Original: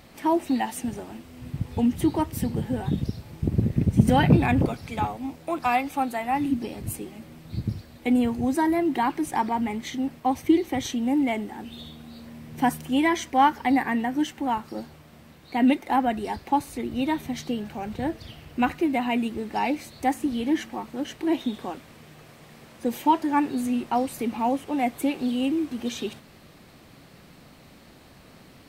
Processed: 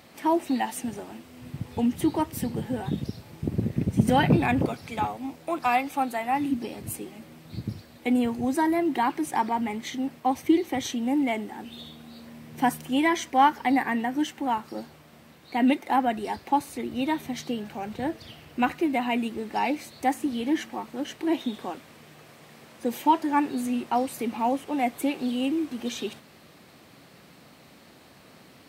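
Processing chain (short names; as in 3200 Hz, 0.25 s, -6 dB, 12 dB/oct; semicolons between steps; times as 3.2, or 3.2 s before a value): HPF 74 Hz; low shelf 160 Hz -7 dB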